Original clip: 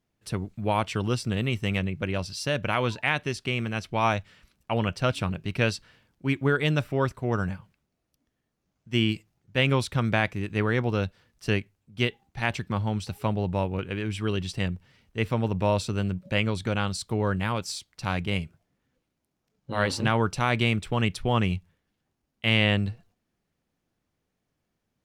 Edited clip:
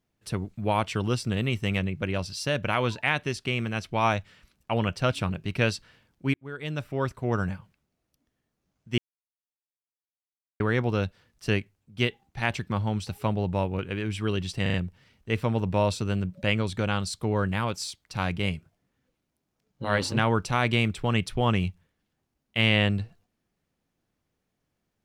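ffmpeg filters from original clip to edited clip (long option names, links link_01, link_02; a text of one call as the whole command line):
ffmpeg -i in.wav -filter_complex "[0:a]asplit=7[link_01][link_02][link_03][link_04][link_05][link_06][link_07];[link_01]atrim=end=6.34,asetpts=PTS-STARTPTS,afade=type=out:start_time=6.336:duration=0.004:curve=hsin[link_08];[link_02]atrim=start=6.34:end=8.98,asetpts=PTS-STARTPTS,afade=type=in:duration=0.94,afade=type=out:start_time=2.636:duration=0.004:curve=hsin[link_09];[link_03]atrim=start=8.98:end=10.6,asetpts=PTS-STARTPTS,volume=0[link_10];[link_04]atrim=start=10.6:end=14.662,asetpts=PTS-STARTPTS,afade=type=in:duration=0.004:curve=hsin[link_11];[link_05]atrim=start=14.618:end=14.662[link_12];[link_06]atrim=start=14.618:end=14.662[link_13];[link_07]atrim=start=14.618[link_14];[link_08][link_09][link_10][link_11]concat=n=4:v=0:a=1[link_15];[link_15][link_12]acrossfade=duration=0.004:curve1=hsin:curve2=hsin[link_16];[link_16][link_13]acrossfade=duration=0.004:curve1=hsin:curve2=hsin[link_17];[link_17][link_14]acrossfade=duration=0.004:curve1=hsin:curve2=hsin" out.wav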